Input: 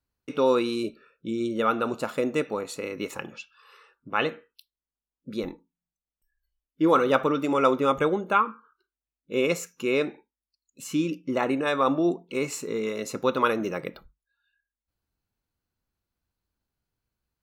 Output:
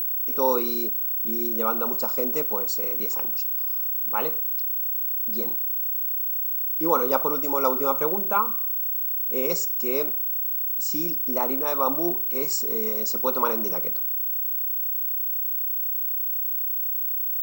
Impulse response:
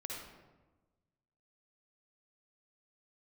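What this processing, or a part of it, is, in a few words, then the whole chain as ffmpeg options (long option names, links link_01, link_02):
old television with a line whistle: -af "highpass=frequency=170:width=0.5412,highpass=frequency=170:width=1.3066,equalizer=frequency=300:width_type=q:width=4:gain=-6,equalizer=frequency=920:width_type=q:width=4:gain=7,equalizer=frequency=1700:width_type=q:width=4:gain=-9,equalizer=frequency=3700:width_type=q:width=4:gain=-9,equalizer=frequency=6200:width_type=q:width=4:gain=-9,lowpass=frequency=6700:width=0.5412,lowpass=frequency=6700:width=1.3066,aeval=exprs='val(0)+0.0224*sin(2*PI*15734*n/s)':channel_layout=same,highshelf=frequency=4000:width_type=q:width=3:gain=11,bandreject=frequency=192.1:width_type=h:width=4,bandreject=frequency=384.2:width_type=h:width=4,bandreject=frequency=576.3:width_type=h:width=4,bandreject=frequency=768.4:width_type=h:width=4,bandreject=frequency=960.5:width_type=h:width=4,bandreject=frequency=1152.6:width_type=h:width=4,bandreject=frequency=1344.7:width_type=h:width=4,bandreject=frequency=1536.8:width_type=h:width=4,bandreject=frequency=1728.9:width_type=h:width=4,bandreject=frequency=1921:width_type=h:width=4,bandreject=frequency=2113.1:width_type=h:width=4,bandreject=frequency=2305.2:width_type=h:width=4,bandreject=frequency=2497.3:width_type=h:width=4,bandreject=frequency=2689.4:width_type=h:width=4,bandreject=frequency=2881.5:width_type=h:width=4,bandreject=frequency=3073.6:width_type=h:width=4,bandreject=frequency=3265.7:width_type=h:width=4,bandreject=frequency=3457.8:width_type=h:width=4,bandreject=frequency=3649.9:width_type=h:width=4,bandreject=frequency=3842:width_type=h:width=4,bandreject=frequency=4034.1:width_type=h:width=4,volume=-1.5dB"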